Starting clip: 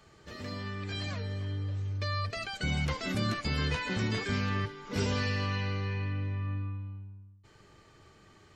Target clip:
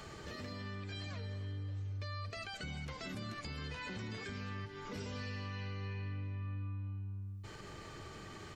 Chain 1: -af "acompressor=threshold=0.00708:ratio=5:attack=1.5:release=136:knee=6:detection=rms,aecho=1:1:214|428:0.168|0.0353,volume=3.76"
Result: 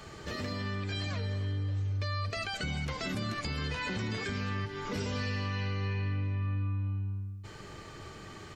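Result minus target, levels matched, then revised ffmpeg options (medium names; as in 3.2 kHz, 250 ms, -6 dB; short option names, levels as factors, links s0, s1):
compression: peak gain reduction -9 dB
-af "acompressor=threshold=0.002:ratio=5:attack=1.5:release=136:knee=6:detection=rms,aecho=1:1:214|428:0.168|0.0353,volume=3.76"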